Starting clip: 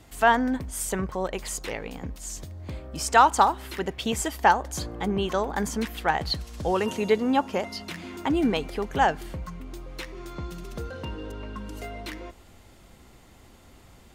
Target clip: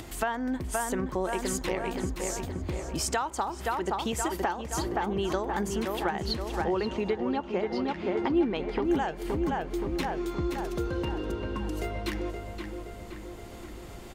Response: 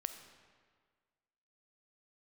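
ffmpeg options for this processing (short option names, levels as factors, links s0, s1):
-filter_complex "[0:a]asettb=1/sr,asplit=3[s0][s1][s2];[s0]atrim=end=6.644[s3];[s1]atrim=start=6.64:end=8.85,asetpts=PTS-STARTPTS,afade=t=in:d=0.004:c=qsin,afade=t=out:st=2.206:d=0.004:c=qsin,lowpass=3600[s4];[s2]atrim=start=8.846[s5];[s3][s4]acrossfade=d=0.004:c1=hsin:c2=qsin[s6];[s6][s5]acrossfade=d=0.004:c1=qsin:c2=hsin,asplit=2[s7][s8];[s8]adelay=522,lowpass=f=2800:p=1,volume=0.501,asplit=2[s9][s10];[s10]adelay=522,lowpass=f=2800:p=1,volume=0.53,asplit=2[s11][s12];[s12]adelay=522,lowpass=f=2800:p=1,volume=0.53,asplit=2[s13][s14];[s14]adelay=522,lowpass=f=2800:p=1,volume=0.53,asplit=2[s15][s16];[s16]adelay=522,lowpass=f=2800:p=1,volume=0.53,asplit=2[s17][s18];[s18]adelay=522,lowpass=f=2800:p=1,volume=0.53,asplit=2[s19][s20];[s20]adelay=522,lowpass=f=2800:p=1,volume=0.53[s21];[s7][s9][s11][s13][s15][s17][s19][s21]amix=inputs=8:normalize=0,acompressor=threshold=0.0398:ratio=10,equalizer=f=350:w=7.6:g=10,acompressor=mode=upward:threshold=0.0141:ratio=2.5,volume=1.19"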